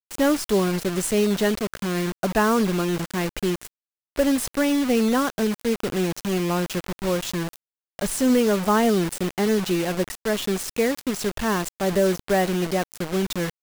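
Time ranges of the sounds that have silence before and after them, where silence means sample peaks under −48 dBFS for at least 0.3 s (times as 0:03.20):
0:04.16–0:07.56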